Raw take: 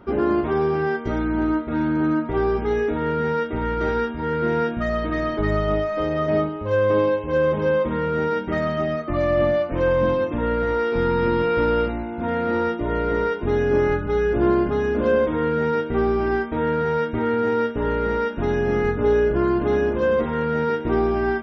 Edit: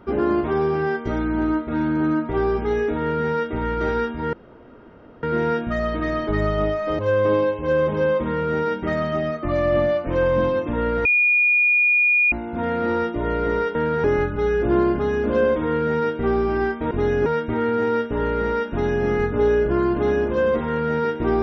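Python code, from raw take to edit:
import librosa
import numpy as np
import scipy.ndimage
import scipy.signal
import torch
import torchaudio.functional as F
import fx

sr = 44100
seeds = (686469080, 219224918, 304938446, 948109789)

y = fx.edit(x, sr, fx.insert_room_tone(at_s=4.33, length_s=0.9),
    fx.cut(start_s=6.09, length_s=0.55),
    fx.bleep(start_s=10.7, length_s=1.27, hz=2440.0, db=-14.0),
    fx.swap(start_s=13.4, length_s=0.35, other_s=16.62, other_length_s=0.29), tone=tone)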